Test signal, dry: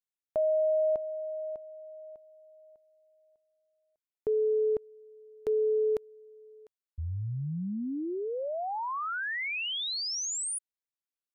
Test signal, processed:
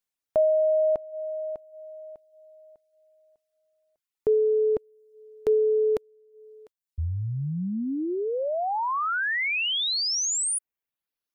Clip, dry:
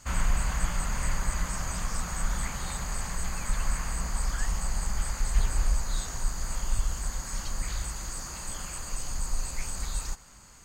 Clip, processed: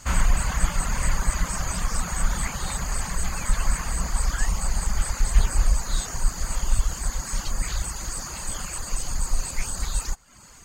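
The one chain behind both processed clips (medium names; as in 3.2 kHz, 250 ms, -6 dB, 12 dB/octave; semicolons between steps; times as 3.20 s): reverb removal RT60 0.73 s; trim +7 dB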